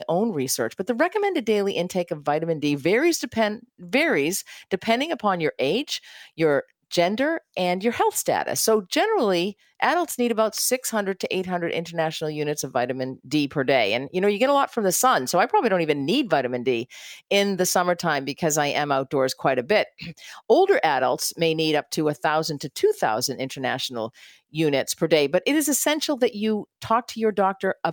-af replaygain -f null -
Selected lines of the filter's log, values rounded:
track_gain = +3.1 dB
track_peak = 0.402